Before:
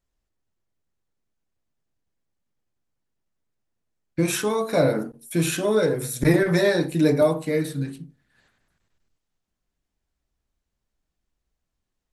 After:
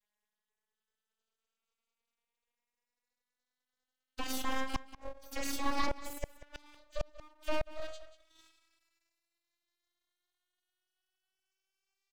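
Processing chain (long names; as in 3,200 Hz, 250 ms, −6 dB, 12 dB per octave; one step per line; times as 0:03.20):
vocoder with a gliding carrier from G#3, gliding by +11 semitones
gate with flip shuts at −16 dBFS, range −37 dB
tilt shelving filter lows −7 dB, about 1,500 Hz
full-wave rectification
slap from a distant wall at 32 metres, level −17 dB
one half of a high-frequency compander encoder only
level +1.5 dB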